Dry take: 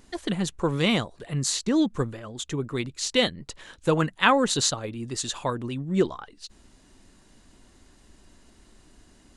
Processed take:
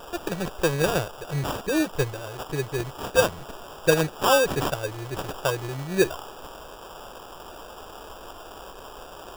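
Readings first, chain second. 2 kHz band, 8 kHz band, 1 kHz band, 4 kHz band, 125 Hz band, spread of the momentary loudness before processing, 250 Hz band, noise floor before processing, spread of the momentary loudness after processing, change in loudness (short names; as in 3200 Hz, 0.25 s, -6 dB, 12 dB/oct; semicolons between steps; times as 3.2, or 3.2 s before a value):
+1.0 dB, -3.5 dB, +0.5 dB, -3.5 dB, 0.0 dB, 14 LU, -3.5 dB, -57 dBFS, 19 LU, 0.0 dB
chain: bell 5100 Hz -8.5 dB 1.7 oct; fixed phaser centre 570 Hz, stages 4; band noise 340–1600 Hz -48 dBFS; sample-rate reducer 2100 Hz, jitter 0%; gain +5.5 dB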